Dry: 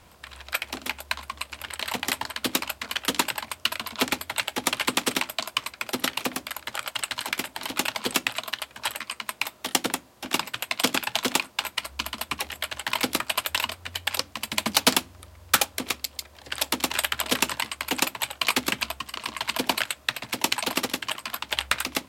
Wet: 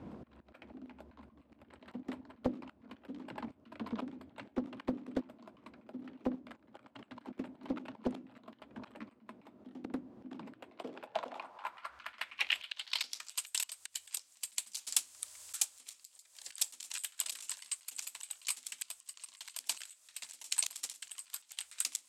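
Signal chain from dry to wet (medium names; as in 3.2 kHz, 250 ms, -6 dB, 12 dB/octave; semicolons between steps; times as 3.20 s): slow attack 582 ms; band-pass sweep 250 Hz -> 8 kHz, 10.44–13.45 s; loudspeaker Doppler distortion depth 0.88 ms; trim +17 dB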